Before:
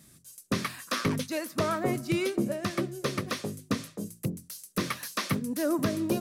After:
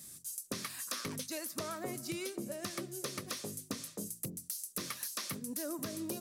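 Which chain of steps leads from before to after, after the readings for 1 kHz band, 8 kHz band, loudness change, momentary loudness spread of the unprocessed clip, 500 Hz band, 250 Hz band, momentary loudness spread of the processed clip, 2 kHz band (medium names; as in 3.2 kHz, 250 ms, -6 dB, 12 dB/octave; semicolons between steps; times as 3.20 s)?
-12.0 dB, +0.5 dB, -8.5 dB, 7 LU, -11.5 dB, -12.5 dB, 3 LU, -10.5 dB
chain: tone controls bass -3 dB, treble +11 dB; compression 6:1, threshold -35 dBFS, peak gain reduction 12 dB; trim -2 dB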